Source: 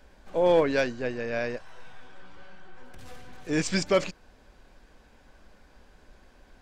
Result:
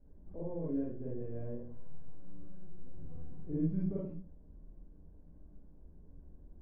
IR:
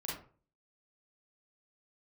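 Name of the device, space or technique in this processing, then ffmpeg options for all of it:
television next door: -filter_complex "[0:a]acompressor=threshold=-31dB:ratio=4,lowpass=260[link_01];[1:a]atrim=start_sample=2205[link_02];[link_01][link_02]afir=irnorm=-1:irlink=0,volume=1dB"

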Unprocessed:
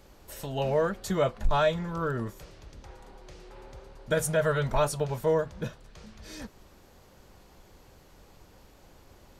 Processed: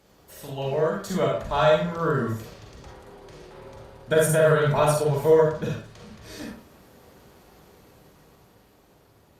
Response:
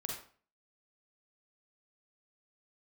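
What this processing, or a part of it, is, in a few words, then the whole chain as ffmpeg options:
far-field microphone of a smart speaker: -filter_complex "[1:a]atrim=start_sample=2205[link_01];[0:a][link_01]afir=irnorm=-1:irlink=0,highpass=81,dynaudnorm=framelen=220:gausssize=13:maxgain=6dB" -ar 48000 -c:a libopus -b:a 48k

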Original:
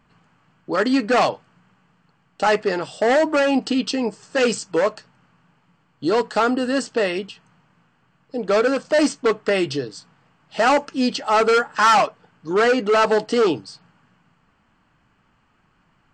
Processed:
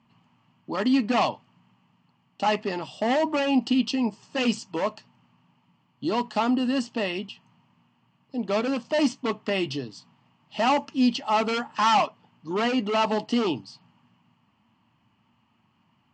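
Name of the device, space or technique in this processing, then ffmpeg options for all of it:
car door speaker: -af "highpass=86,equalizer=frequency=110:width_type=q:width=4:gain=8,equalizer=frequency=230:width_type=q:width=4:gain=9,equalizer=frequency=470:width_type=q:width=4:gain=-8,equalizer=frequency=950:width_type=q:width=4:gain=6,equalizer=frequency=1500:width_type=q:width=4:gain=-10,equalizer=frequency=2900:width_type=q:width=4:gain=6,lowpass=frequency=6900:width=0.5412,lowpass=frequency=6900:width=1.3066,volume=-6dB"

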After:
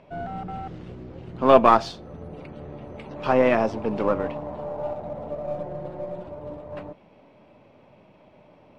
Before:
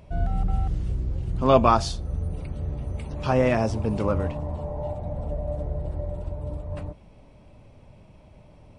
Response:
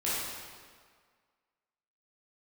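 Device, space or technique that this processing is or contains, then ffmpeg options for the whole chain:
crystal radio: -filter_complex "[0:a]highpass=240,lowpass=3200,aeval=exprs='if(lt(val(0),0),0.708*val(0),val(0))':channel_layout=same,asettb=1/sr,asplit=3[link_01][link_02][link_03];[link_01]atrim=end=5.444[link_04];[link_02]atrim=start=5.44:end=6.27,asetpts=PTS-STARTPTS,afade=type=in:duration=0.004:curve=qsin,afade=type=out:start_time=0.826:duration=0.004:curve=qsin,aecho=1:1:5.6:0.71,atrim=end_sample=36603[link_05];[link_03]atrim=start=6.266[link_06];[link_04][link_05]acrossfade=duration=0.004:curve1=hsin:curve2=qsin[link_07];[link_07][link_06]acrossfade=duration=0.004:curve1=qsin:curve2=hsin,volume=4.5dB"

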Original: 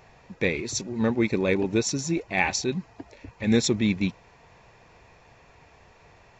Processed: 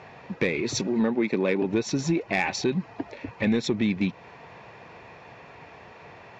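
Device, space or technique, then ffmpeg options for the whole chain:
AM radio: -filter_complex "[0:a]asettb=1/sr,asplit=3[link_01][link_02][link_03];[link_01]atrim=end=0.874[link_04];[link_02]atrim=start=0.87:end=1.62,asetpts=PTS-STARTPTS,afade=type=in:duration=0.004:curve=qsin,afade=type=out:start_time=0.746:duration=0.004:curve=qsin,highpass=frequency=150:width=0.5412,highpass=frequency=150:width=1.3066[link_05];[link_03]atrim=start=1.616[link_06];[link_04][link_05]acrossfade=duration=0.004:curve1=hsin:curve2=qsin[link_07];[link_07][link_06]acrossfade=duration=0.004:curve1=qsin:curve2=hsin,highpass=130,lowpass=3600,acompressor=threshold=-29dB:ratio=6,asoftclip=type=tanh:threshold=-21dB,volume=9dB"

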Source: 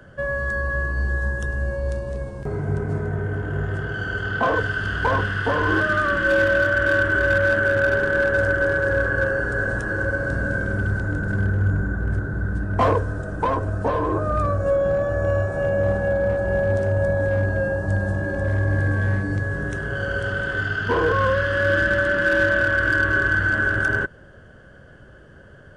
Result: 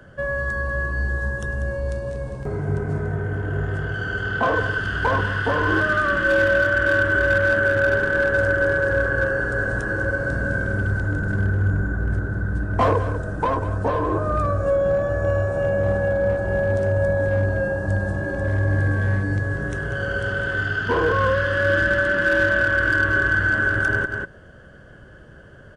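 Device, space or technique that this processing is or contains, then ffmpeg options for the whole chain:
ducked delay: -filter_complex "[0:a]asplit=3[link_01][link_02][link_03];[link_02]adelay=192,volume=-5dB[link_04];[link_03]apad=whole_len=1144772[link_05];[link_04][link_05]sidechaincompress=threshold=-29dB:ratio=8:attack=7.7:release=109[link_06];[link_01][link_06]amix=inputs=2:normalize=0"

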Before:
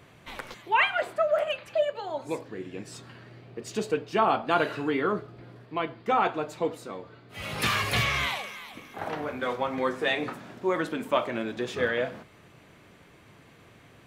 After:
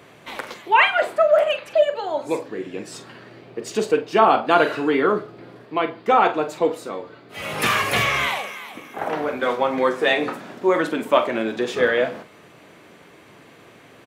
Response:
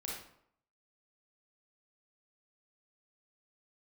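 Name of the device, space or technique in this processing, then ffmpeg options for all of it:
filter by subtraction: -filter_complex "[0:a]asettb=1/sr,asplit=3[link_01][link_02][link_03];[link_01]atrim=end=7.414[link_04];[link_02]atrim=start=7.41:end=9.15,asetpts=PTS-STARTPTS,afade=type=in:duration=0.004:curve=qsin,afade=type=out:start_time=1.736:duration=0.004:curve=qsin,equalizer=frequency=4300:width=2:gain=-6[link_05];[link_03]atrim=start=9.146[link_06];[link_04][link_05]acrossfade=duration=0.004:curve1=hsin:curve2=qsin[link_07];[link_07][link_06]acrossfade=duration=0.004:curve1=qsin:curve2=hsin,asplit=2[link_08][link_09];[link_09]adelay=45,volume=-12dB[link_10];[link_08][link_10]amix=inputs=2:normalize=0,asplit=2[link_11][link_12];[link_12]lowpass=380,volume=-1[link_13];[link_11][link_13]amix=inputs=2:normalize=0,volume=6.5dB"

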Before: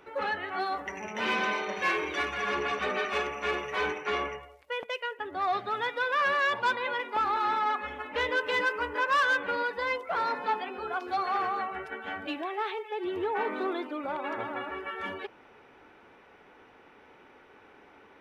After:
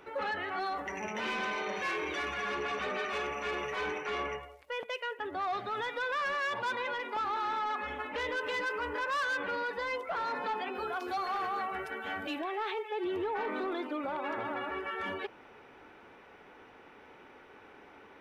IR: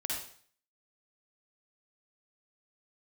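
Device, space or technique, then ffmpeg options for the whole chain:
soft clipper into limiter: -filter_complex "[0:a]asettb=1/sr,asplit=3[link_01][link_02][link_03];[link_01]atrim=end=10.754[link_04];[link_02]atrim=start=10.75:end=12.39,asetpts=PTS-STARTPTS,afade=type=in:duration=0.004:curve=qsin,afade=type=out:start_time=1.636:duration=0.004:curve=qsin,highshelf=frequency=7500:gain=12[link_05];[link_03]atrim=start=12.386[link_06];[link_04][link_05]acrossfade=duration=0.004:curve1=hsin:curve2=qsin[link_07];[link_07][link_06]acrossfade=duration=0.004:curve1=qsin:curve2=hsin,asoftclip=type=tanh:threshold=-21.5dB,alimiter=level_in=5dB:limit=-24dB:level=0:latency=1:release=39,volume=-5dB,volume=1dB"

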